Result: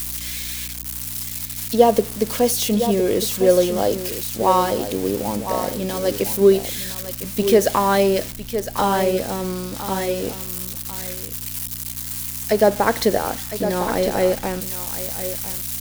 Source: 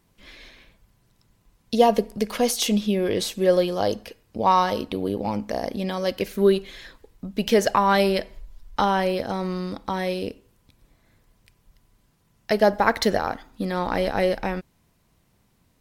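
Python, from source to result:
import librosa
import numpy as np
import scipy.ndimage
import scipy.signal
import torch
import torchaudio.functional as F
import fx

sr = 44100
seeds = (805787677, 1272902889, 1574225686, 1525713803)

p1 = x + 0.5 * 10.0 ** (-17.5 / 20.0) * np.diff(np.sign(x), prepend=np.sign(x[:1]))
p2 = fx.add_hum(p1, sr, base_hz=60, snr_db=12)
p3 = p2 + fx.echo_single(p2, sr, ms=1008, db=-9.5, dry=0)
p4 = fx.dynamic_eq(p3, sr, hz=400.0, q=0.71, threshold_db=-32.0, ratio=4.0, max_db=7)
y = p4 * 10.0 ** (-2.0 / 20.0)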